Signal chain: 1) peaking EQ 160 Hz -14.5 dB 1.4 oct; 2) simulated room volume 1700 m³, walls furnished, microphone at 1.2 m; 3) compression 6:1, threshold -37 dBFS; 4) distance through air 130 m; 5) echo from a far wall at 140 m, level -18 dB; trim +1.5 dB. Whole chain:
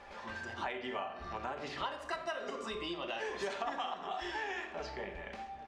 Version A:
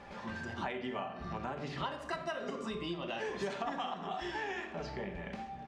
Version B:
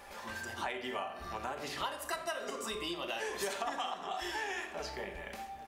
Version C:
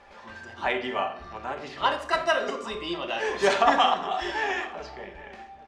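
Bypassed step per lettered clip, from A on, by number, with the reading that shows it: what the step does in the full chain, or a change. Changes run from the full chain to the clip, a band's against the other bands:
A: 1, 125 Hz band +9.0 dB; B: 4, 8 kHz band +10.5 dB; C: 3, mean gain reduction 7.5 dB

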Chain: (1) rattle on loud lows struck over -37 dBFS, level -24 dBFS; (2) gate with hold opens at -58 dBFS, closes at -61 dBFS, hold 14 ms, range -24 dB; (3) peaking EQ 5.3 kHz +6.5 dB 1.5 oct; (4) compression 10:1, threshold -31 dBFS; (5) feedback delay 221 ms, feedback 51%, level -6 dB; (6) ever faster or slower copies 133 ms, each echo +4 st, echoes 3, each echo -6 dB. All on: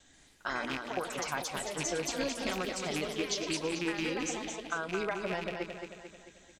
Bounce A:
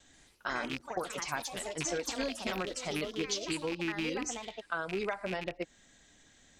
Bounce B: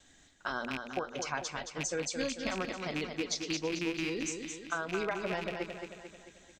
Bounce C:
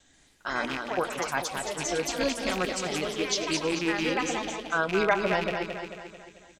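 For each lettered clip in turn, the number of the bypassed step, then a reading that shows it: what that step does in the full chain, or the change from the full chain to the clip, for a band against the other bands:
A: 5, momentary loudness spread change -4 LU; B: 6, loudness change -1.0 LU; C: 4, mean gain reduction 4.5 dB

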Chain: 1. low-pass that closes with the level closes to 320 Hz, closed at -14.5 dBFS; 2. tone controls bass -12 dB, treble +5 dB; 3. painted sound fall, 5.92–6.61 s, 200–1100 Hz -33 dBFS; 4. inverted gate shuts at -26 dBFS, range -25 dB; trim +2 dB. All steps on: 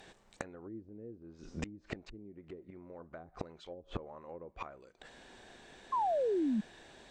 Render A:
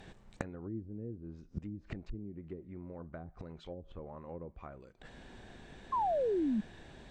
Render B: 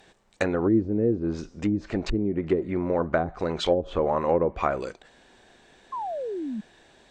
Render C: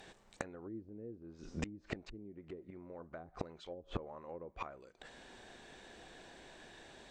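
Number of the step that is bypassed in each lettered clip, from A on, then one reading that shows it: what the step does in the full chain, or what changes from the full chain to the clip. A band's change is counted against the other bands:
2, momentary loudness spread change -2 LU; 4, momentary loudness spread change -13 LU; 3, 1 kHz band -11.5 dB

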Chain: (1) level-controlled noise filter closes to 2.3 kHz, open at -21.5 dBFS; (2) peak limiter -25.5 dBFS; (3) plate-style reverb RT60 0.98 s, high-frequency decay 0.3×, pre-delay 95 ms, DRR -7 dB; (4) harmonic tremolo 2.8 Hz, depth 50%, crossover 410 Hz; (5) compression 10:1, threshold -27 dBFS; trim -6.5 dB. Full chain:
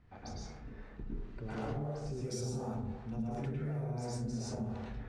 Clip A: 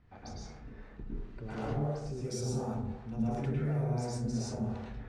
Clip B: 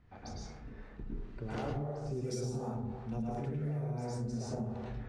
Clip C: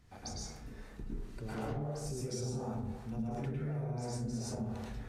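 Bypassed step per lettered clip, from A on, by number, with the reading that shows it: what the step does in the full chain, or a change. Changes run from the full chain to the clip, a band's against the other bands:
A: 5, mean gain reduction 2.0 dB; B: 2, mean gain reduction 2.5 dB; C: 1, 8 kHz band +3.0 dB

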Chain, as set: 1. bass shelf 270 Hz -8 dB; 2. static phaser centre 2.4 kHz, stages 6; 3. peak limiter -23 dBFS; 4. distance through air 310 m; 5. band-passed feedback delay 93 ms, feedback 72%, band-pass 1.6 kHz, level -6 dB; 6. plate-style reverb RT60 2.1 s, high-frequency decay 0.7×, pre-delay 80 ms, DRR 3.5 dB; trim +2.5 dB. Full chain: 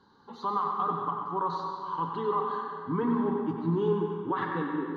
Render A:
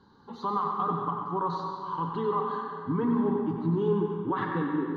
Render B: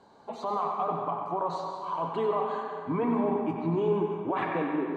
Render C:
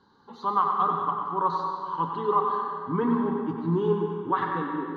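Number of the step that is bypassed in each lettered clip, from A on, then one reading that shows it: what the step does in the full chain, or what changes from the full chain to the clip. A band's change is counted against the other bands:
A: 1, 125 Hz band +3.0 dB; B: 2, 500 Hz band +2.5 dB; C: 3, 1 kHz band +3.0 dB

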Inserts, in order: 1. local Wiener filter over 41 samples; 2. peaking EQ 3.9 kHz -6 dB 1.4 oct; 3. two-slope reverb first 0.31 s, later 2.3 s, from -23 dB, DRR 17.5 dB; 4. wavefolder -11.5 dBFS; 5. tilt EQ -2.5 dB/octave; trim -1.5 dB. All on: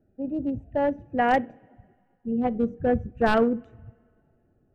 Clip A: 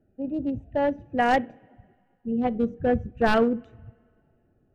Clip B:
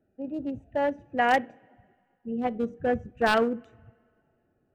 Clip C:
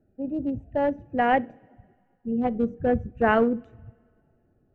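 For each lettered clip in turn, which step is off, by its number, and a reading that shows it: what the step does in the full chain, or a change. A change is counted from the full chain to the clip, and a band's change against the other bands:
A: 2, 4 kHz band +3.0 dB; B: 5, 125 Hz band -7.0 dB; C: 4, distortion -15 dB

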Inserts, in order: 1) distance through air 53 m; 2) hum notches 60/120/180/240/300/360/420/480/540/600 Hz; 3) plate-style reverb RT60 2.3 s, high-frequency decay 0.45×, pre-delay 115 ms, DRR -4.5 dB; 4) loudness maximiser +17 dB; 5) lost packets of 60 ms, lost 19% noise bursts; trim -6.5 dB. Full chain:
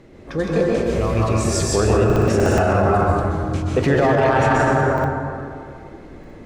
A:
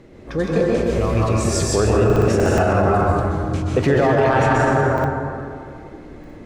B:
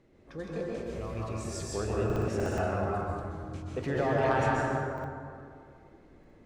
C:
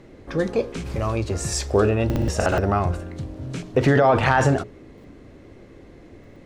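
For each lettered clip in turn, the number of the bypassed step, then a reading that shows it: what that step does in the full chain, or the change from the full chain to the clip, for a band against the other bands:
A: 2, momentary loudness spread change +1 LU; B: 4, crest factor change +6.0 dB; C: 3, loudness change -3.5 LU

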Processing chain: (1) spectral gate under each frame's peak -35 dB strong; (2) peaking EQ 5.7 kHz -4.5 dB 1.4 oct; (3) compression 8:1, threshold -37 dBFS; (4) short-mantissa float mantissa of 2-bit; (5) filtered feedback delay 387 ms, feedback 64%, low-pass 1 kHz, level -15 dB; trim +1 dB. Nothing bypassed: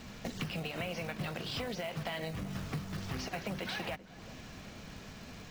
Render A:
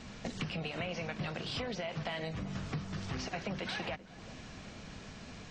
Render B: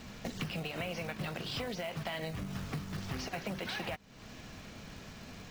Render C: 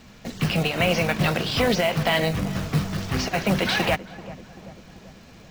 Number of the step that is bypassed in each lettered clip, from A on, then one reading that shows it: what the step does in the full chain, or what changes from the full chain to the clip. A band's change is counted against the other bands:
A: 4, distortion -20 dB; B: 5, echo-to-direct -18.5 dB to none; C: 3, mean gain reduction 10.0 dB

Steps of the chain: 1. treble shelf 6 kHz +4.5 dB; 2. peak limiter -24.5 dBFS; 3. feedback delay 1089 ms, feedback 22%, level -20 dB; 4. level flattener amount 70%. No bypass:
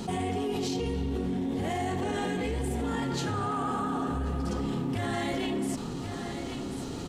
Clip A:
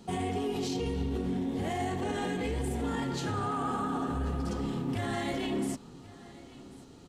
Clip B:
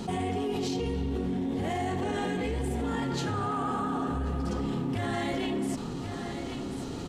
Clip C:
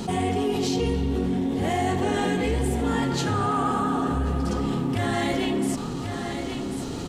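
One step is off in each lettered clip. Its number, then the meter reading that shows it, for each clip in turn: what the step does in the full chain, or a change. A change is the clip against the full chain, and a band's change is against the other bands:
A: 4, crest factor change -1.5 dB; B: 1, 8 kHz band -2.5 dB; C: 2, mean gain reduction 3.0 dB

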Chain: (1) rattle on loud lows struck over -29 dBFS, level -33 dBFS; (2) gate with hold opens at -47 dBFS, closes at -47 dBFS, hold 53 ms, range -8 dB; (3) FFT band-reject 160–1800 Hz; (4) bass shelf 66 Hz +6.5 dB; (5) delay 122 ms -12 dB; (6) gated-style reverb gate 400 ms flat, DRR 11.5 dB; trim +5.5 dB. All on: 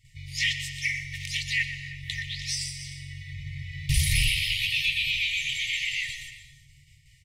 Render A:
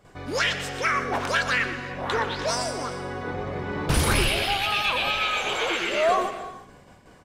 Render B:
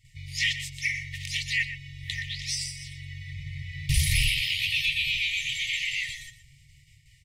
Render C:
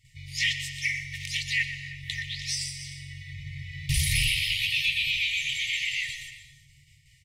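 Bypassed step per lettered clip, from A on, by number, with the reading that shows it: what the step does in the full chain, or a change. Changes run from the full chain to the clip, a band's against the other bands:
3, 2 kHz band +2.5 dB; 6, echo-to-direct -8.5 dB to -12.0 dB; 4, 125 Hz band -2.0 dB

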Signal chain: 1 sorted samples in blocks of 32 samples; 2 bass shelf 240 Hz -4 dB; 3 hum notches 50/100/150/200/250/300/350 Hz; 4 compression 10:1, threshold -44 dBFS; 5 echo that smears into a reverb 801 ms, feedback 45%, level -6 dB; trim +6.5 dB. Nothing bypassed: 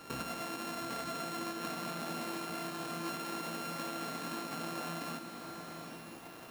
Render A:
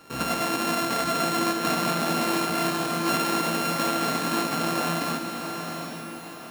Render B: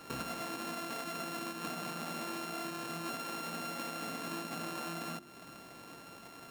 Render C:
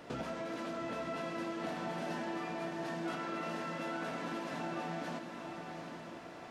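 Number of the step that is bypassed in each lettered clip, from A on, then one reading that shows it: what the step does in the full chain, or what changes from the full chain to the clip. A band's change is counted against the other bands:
4, mean gain reduction 11.0 dB; 5, echo-to-direct -5.0 dB to none; 1, crest factor change -2.5 dB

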